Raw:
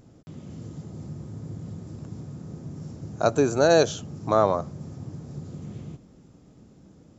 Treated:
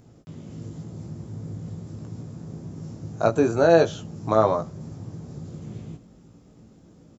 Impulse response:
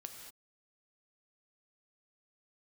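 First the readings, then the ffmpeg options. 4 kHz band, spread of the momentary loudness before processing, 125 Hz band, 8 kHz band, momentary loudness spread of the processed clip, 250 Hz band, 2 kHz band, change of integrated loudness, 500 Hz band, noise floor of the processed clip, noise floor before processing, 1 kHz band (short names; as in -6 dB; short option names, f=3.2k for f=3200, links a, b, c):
-5.0 dB, 19 LU, +1.5 dB, n/a, 19 LU, +2.0 dB, +0.5 dB, +1.5 dB, +1.5 dB, -53 dBFS, -54 dBFS, +1.0 dB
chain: -filter_complex "[0:a]asplit=2[a][b];[b]adelay=18,volume=-5.5dB[c];[a][c]amix=inputs=2:normalize=0,acrossover=split=3300[d][e];[e]acompressor=threshold=-44dB:ratio=4:attack=1:release=60[f];[d][f]amix=inputs=2:normalize=0"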